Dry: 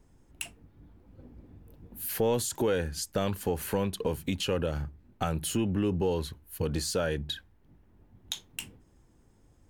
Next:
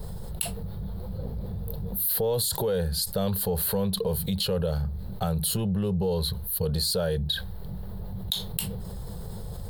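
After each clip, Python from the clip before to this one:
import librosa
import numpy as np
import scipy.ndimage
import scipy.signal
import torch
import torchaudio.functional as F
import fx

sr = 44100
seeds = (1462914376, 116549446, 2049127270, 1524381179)

y = fx.curve_eq(x, sr, hz=(140.0, 190.0, 280.0, 450.0, 1600.0, 2500.0, 4200.0, 6200.0, 9600.0, 14000.0), db=(0, 4, -23, 1, -8, -14, 7, -14, 2, 7))
y = fx.env_flatten(y, sr, amount_pct=70)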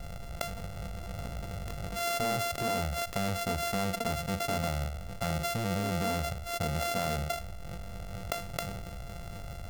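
y = np.r_[np.sort(x[:len(x) // 64 * 64].reshape(-1, 64), axis=1).ravel(), x[len(x) // 64 * 64:]]
y = y * librosa.db_to_amplitude(-5.0)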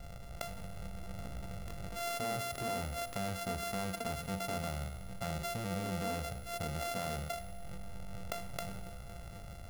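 y = fx.comb_fb(x, sr, f0_hz=63.0, decay_s=1.9, harmonics='all', damping=0.0, mix_pct=70)
y = y * librosa.db_to_amplitude(3.0)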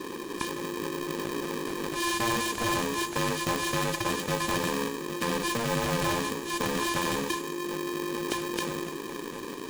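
y = fx.freq_compress(x, sr, knee_hz=2800.0, ratio=1.5)
y = y * np.sign(np.sin(2.0 * np.pi * 350.0 * np.arange(len(y)) / sr))
y = y * librosa.db_to_amplitude(9.0)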